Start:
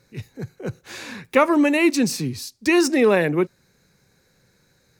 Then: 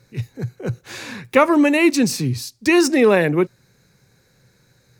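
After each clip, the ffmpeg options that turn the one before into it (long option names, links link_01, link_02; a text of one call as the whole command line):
ffmpeg -i in.wav -af "equalizer=frequency=120:width=5.2:gain=9.5,volume=2.5dB" out.wav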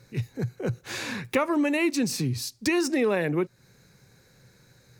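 ffmpeg -i in.wav -af "acompressor=threshold=-26dB:ratio=2.5" out.wav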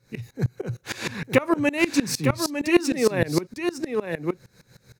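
ffmpeg -i in.wav -af "aecho=1:1:904:0.562,aeval=exprs='val(0)*pow(10,-22*if(lt(mod(-6.5*n/s,1),2*abs(-6.5)/1000),1-mod(-6.5*n/s,1)/(2*abs(-6.5)/1000),(mod(-6.5*n/s,1)-2*abs(-6.5)/1000)/(1-2*abs(-6.5)/1000))/20)':channel_layout=same,volume=8.5dB" out.wav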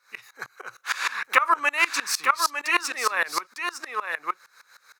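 ffmpeg -i in.wav -af "highpass=frequency=1200:width_type=q:width=4.3,volume=1.5dB" out.wav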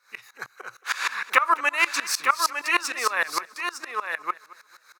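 ffmpeg -i in.wav -af "aecho=1:1:223|446|669:0.1|0.033|0.0109" out.wav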